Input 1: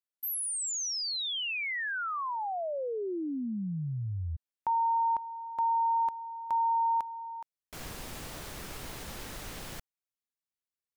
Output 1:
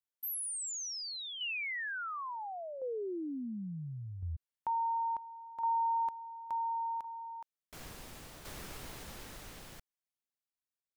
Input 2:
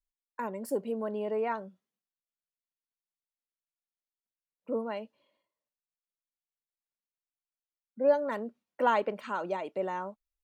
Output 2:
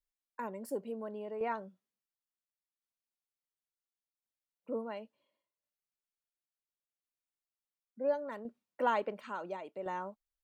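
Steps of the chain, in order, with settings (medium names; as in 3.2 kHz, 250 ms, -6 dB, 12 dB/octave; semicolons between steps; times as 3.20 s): tremolo saw down 0.71 Hz, depth 55%; trim -3 dB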